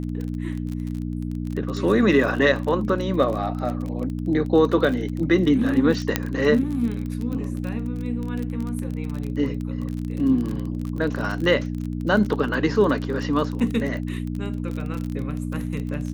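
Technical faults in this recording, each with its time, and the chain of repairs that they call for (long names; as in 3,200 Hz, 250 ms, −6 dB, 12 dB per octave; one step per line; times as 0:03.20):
surface crackle 29 per second −27 dBFS
mains hum 60 Hz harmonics 5 −28 dBFS
0:06.16: click −4 dBFS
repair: click removal
hum removal 60 Hz, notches 5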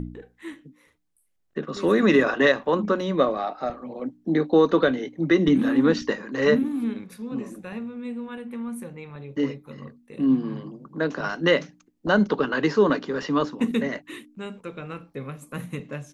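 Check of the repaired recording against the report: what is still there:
none of them is left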